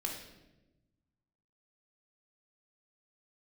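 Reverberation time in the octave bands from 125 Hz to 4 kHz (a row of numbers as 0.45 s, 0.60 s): 1.9 s, 1.5 s, 1.2 s, 0.85 s, 0.85 s, 0.75 s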